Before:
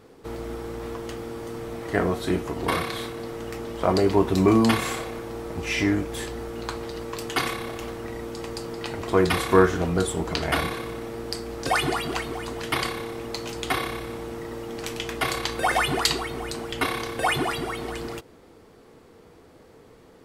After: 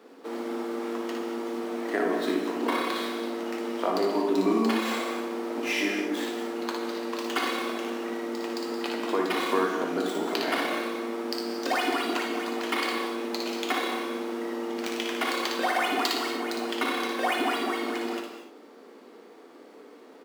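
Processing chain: median filter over 5 samples; steep high-pass 220 Hz 48 dB/octave; compression 2.5:1, threshold -27 dBFS, peak gain reduction 10.5 dB; on a send: early reflections 58 ms -5 dB, 75 ms -11 dB; on the sum: gated-style reverb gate 260 ms flat, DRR 4 dB

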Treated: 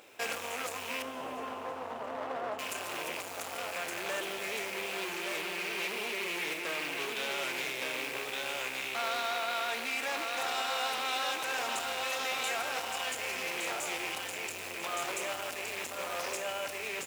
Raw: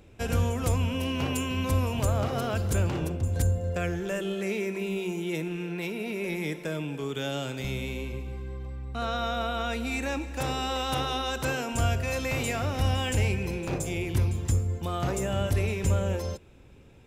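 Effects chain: rattle on loud lows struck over -35 dBFS, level -29 dBFS; peak limiter -25 dBFS, peak gain reduction 10 dB; delay 1167 ms -4 dB; modulation noise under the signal 19 dB; 1.02–2.59 s: Savitzky-Golay filter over 65 samples; hard clipper -31 dBFS, distortion -11 dB; gain riding 0.5 s; high-pass 660 Hz 12 dB/octave; reverberation RT60 4.1 s, pre-delay 48 ms, DRR 10 dB; loudspeaker Doppler distortion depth 0.21 ms; trim +4.5 dB

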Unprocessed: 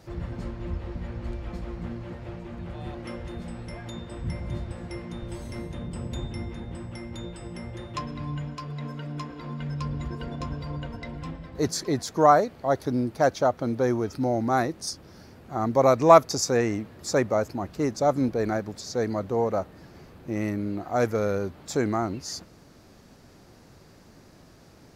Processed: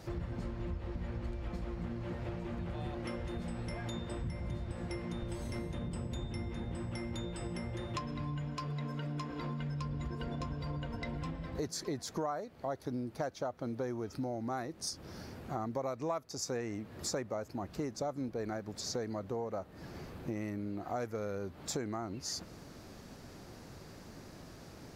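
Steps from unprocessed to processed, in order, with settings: compression 6:1, threshold -37 dBFS, peak gain reduction 25.5 dB; trim +1.5 dB

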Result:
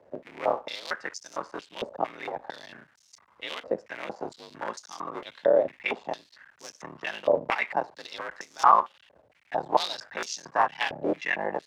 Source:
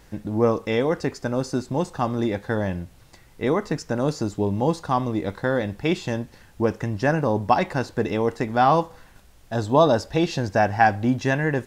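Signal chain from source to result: cycle switcher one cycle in 3, muted; frequency shift +50 Hz; step-sequenced band-pass 4.4 Hz 570–6000 Hz; trim +7.5 dB

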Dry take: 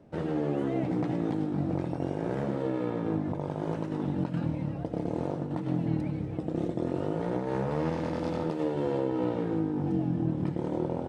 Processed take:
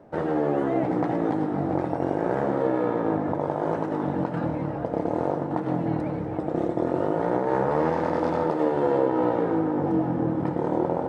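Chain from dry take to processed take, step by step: FFT filter 170 Hz 0 dB, 800 Hz +11 dB, 1.8 kHz +8 dB, 2.6 kHz 0 dB; on a send: tape echo 402 ms, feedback 87%, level -11.5 dB, low-pass 3.8 kHz

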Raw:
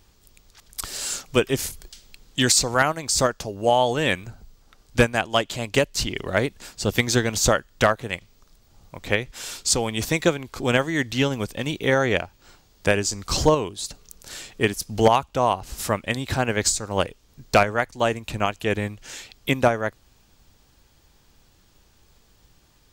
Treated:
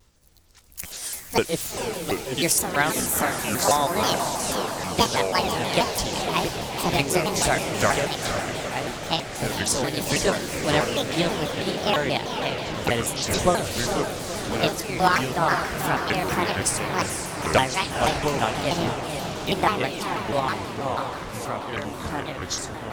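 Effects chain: sawtooth pitch modulation +10.5 st, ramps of 460 ms; echo that smears into a reverb 473 ms, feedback 57%, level -5.5 dB; ever faster or slower copies 270 ms, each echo -5 st, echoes 3, each echo -6 dB; vibrato with a chosen wave saw down 6.2 Hz, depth 250 cents; trim -2 dB

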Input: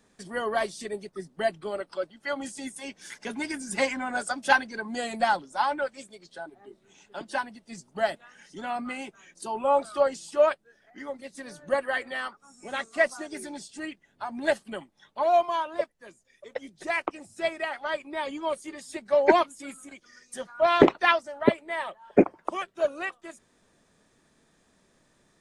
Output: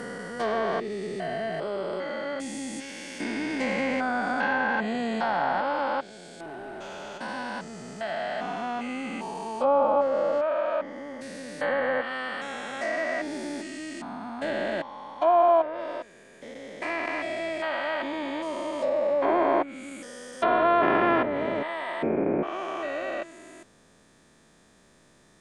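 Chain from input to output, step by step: spectrogram pixelated in time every 400 ms; 6.40–7.18 s: waveshaping leveller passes 2; low-pass that closes with the level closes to 1.9 kHz, closed at -28.5 dBFS; trim +8 dB

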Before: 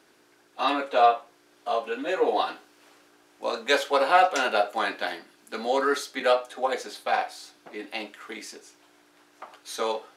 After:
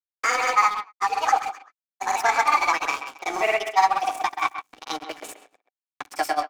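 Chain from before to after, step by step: gliding tape speed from 180% -> 133%; in parallel at 0 dB: compression, threshold -36 dBFS, peak gain reduction 20 dB; on the sum: dynamic bell 8.5 kHz, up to +4 dB, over -45 dBFS, Q 1.1; crossover distortion -34.5 dBFS; peaking EQ 1.2 kHz +4 dB 0.98 oct; small resonant body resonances 290/760/2300 Hz, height 11 dB, ringing for 35 ms; on a send: delay 132 ms -22.5 dB; on the sum: granulator, grains 20 per s, pitch spread up and down by 0 st; speakerphone echo 130 ms, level -10 dB; three bands compressed up and down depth 40%; trim -1 dB

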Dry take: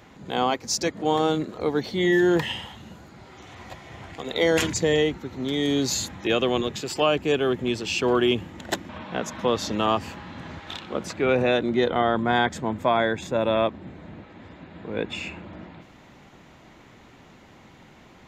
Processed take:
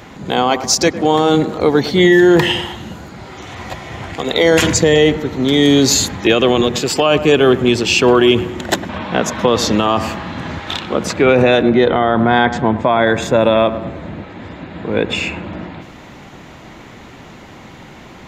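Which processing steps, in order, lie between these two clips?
11.62–13.07 s: distance through air 130 m; on a send: feedback echo behind a low-pass 104 ms, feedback 50%, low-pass 2 kHz, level -15.5 dB; on the sum: loudness maximiser +14 dB; trim -1 dB

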